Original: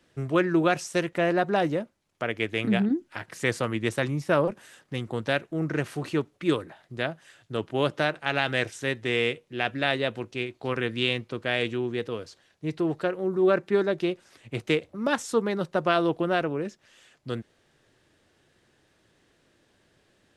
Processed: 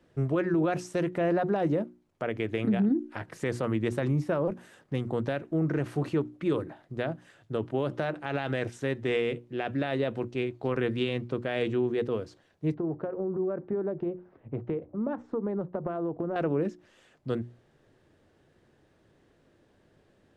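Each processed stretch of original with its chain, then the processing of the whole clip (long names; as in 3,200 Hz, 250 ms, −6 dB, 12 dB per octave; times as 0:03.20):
0:12.74–0:16.36: low-pass filter 1,100 Hz + downward compressor 10 to 1, threshold −29 dBFS
whole clip: tilt shelving filter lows +6.5 dB, about 1,400 Hz; mains-hum notches 60/120/180/240/300/360 Hz; brickwall limiter −16 dBFS; level −2.5 dB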